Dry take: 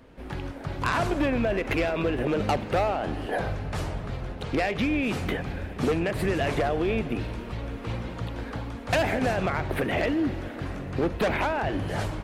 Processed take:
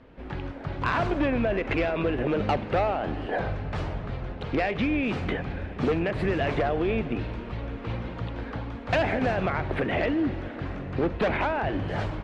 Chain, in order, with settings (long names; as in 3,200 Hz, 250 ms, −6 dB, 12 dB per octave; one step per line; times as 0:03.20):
low-pass filter 3,600 Hz 12 dB per octave